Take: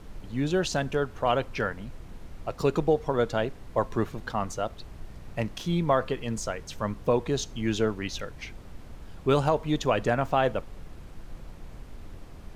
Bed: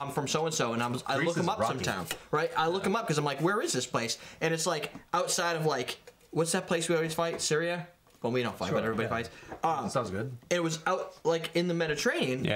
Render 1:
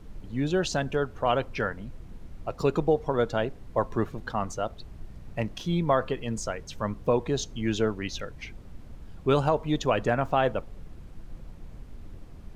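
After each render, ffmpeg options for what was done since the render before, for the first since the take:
-af "afftdn=nr=6:nf=-45"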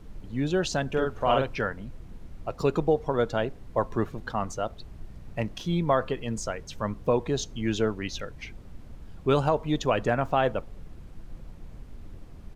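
-filter_complex "[0:a]asplit=3[a][b][c];[a]afade=t=out:st=0.96:d=0.02[d];[b]asplit=2[e][f];[f]adelay=45,volume=-3dB[g];[e][g]amix=inputs=2:normalize=0,afade=t=in:st=0.96:d=0.02,afade=t=out:st=1.55:d=0.02[h];[c]afade=t=in:st=1.55:d=0.02[i];[d][h][i]amix=inputs=3:normalize=0"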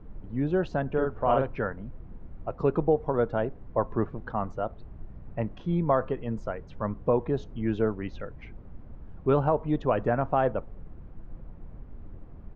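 -af "lowpass=1.4k"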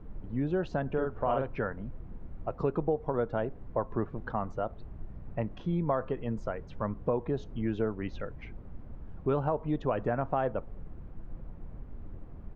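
-af "acompressor=threshold=-29dB:ratio=2"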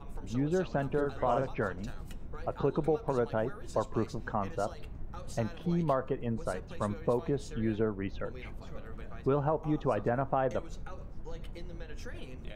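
-filter_complex "[1:a]volume=-19.5dB[a];[0:a][a]amix=inputs=2:normalize=0"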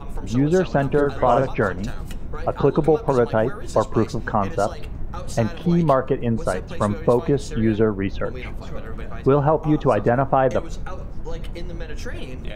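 -af "volume=12dB"

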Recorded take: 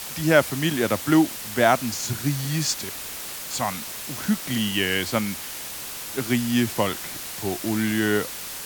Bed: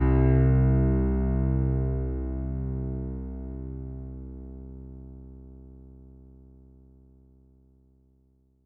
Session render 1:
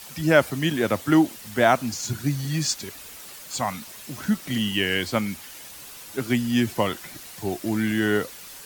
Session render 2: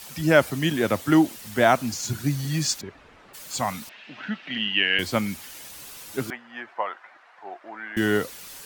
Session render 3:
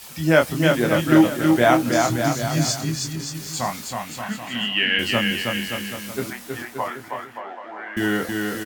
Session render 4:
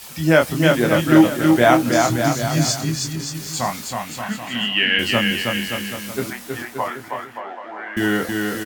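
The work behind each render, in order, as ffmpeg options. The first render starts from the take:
-af "afftdn=nr=9:nf=-35"
-filter_complex "[0:a]asplit=3[a][b][c];[a]afade=t=out:st=2.8:d=0.02[d];[b]lowpass=1.7k,afade=t=in:st=2.8:d=0.02,afade=t=out:st=3.33:d=0.02[e];[c]afade=t=in:st=3.33:d=0.02[f];[d][e][f]amix=inputs=3:normalize=0,asettb=1/sr,asplit=3[g][h][i];[g]atrim=end=3.894[j];[h]atrim=start=3.89:end=4.99,asetpts=PTS-STARTPTS,afade=t=in:d=0.004:c=qsin,afade=t=out:st=1.096:d=0.004:c=qsin,highpass=320,equalizer=f=370:t=q:w=4:g=-8,equalizer=f=520:t=q:w=4:g=-5,equalizer=f=1.1k:t=q:w=4:g=-5,equalizer=f=1.7k:t=q:w=4:g=4,equalizer=f=2.7k:t=q:w=4:g=7,lowpass=f=3.5k:w=0.5412,lowpass=f=3.5k:w=1.3066[k];[i]atrim=start=4.986[l];[j][k]acrossfade=d=0.004:c1=hsin:c2=qsin[m];[m][l]acrossfade=d=0.004:c1=qsin:c2=hsin,asettb=1/sr,asplit=3[n][o][p];[n]atrim=end=6.304[q];[o]atrim=start=6.3:end=7.97,asetpts=PTS-STARTPTS,afade=t=in:d=0.004:c=qsin,afade=t=out:st=1.666:d=0.004:c=qsin,asuperpass=centerf=1100:order=4:qfactor=1[r];[p]atrim=start=7.966[s];[q][r]acrossfade=d=0.004:c1=hsin:c2=qsin[t];[t][s]acrossfade=d=0.004:c1=qsin:c2=hsin"
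-filter_complex "[0:a]asplit=2[a][b];[b]adelay=25,volume=-5dB[c];[a][c]amix=inputs=2:normalize=0,aecho=1:1:320|576|780.8|944.6|1076:0.631|0.398|0.251|0.158|0.1"
-af "volume=2.5dB,alimiter=limit=-1dB:level=0:latency=1"

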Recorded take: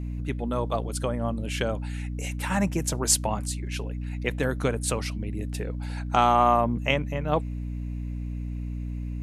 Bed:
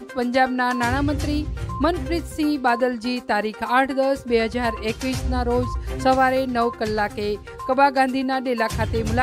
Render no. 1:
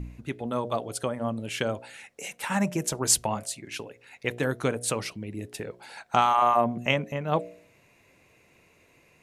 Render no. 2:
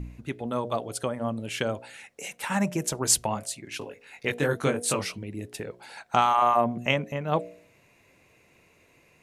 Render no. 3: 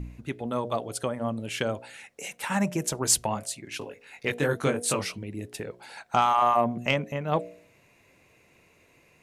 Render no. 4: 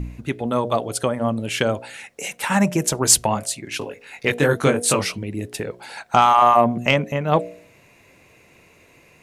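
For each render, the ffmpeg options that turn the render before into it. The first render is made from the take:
-af "bandreject=f=60:t=h:w=4,bandreject=f=120:t=h:w=4,bandreject=f=180:t=h:w=4,bandreject=f=240:t=h:w=4,bandreject=f=300:t=h:w=4,bandreject=f=360:t=h:w=4,bandreject=f=420:t=h:w=4,bandreject=f=480:t=h:w=4,bandreject=f=540:t=h:w=4,bandreject=f=600:t=h:w=4,bandreject=f=660:t=h:w=4,bandreject=f=720:t=h:w=4"
-filter_complex "[0:a]asettb=1/sr,asplit=3[a][b][c];[a]atrim=end=3.794[d];[b]atrim=start=3.79:end=5.23,asetpts=PTS-STARTPTS,afade=t=in:d=0.004:c=qsin,afade=t=out:st=1.436:d=0.004:c=qsin,asplit=2[e][f];[f]adelay=21,volume=-2dB[g];[e][g]amix=inputs=2:normalize=0,atrim=end_sample=63504[h];[c]atrim=start=5.226[i];[d][h]acrossfade=d=0.004:c1=hsin:c2=qsin[j];[j][i]acrossfade=d=0.004:c1=qsin:c2=hsin"
-af "asoftclip=type=tanh:threshold=-7.5dB"
-af "volume=8dB,alimiter=limit=-2dB:level=0:latency=1"

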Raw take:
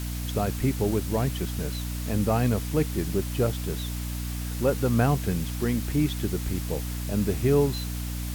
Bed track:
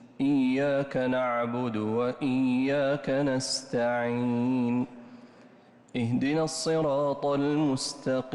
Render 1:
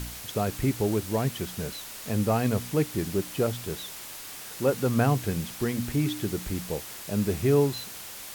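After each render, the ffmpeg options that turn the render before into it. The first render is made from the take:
-af "bandreject=f=60:t=h:w=4,bandreject=f=120:t=h:w=4,bandreject=f=180:t=h:w=4,bandreject=f=240:t=h:w=4,bandreject=f=300:t=h:w=4"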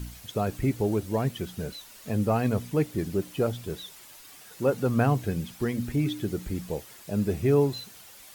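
-af "afftdn=nr=10:nf=-41"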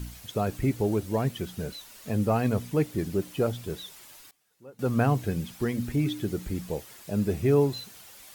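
-filter_complex "[0:a]asplit=3[a][b][c];[a]atrim=end=4.31,asetpts=PTS-STARTPTS,afade=t=out:st=3.82:d=0.49:c=log:silence=0.0668344[d];[b]atrim=start=4.31:end=4.79,asetpts=PTS-STARTPTS,volume=-23.5dB[e];[c]atrim=start=4.79,asetpts=PTS-STARTPTS,afade=t=in:d=0.49:c=log:silence=0.0668344[f];[d][e][f]concat=n=3:v=0:a=1"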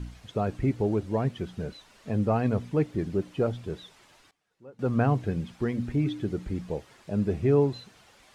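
-af "lowpass=10k,aemphasis=mode=reproduction:type=75kf"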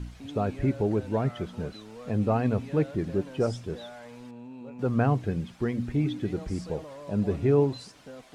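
-filter_complex "[1:a]volume=-17dB[a];[0:a][a]amix=inputs=2:normalize=0"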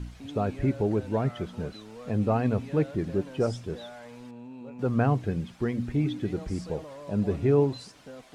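-af anull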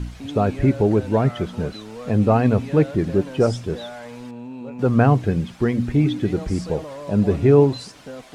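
-af "volume=8.5dB"

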